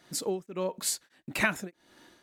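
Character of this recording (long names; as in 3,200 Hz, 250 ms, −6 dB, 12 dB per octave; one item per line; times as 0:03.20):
tremolo triangle 1.6 Hz, depth 100%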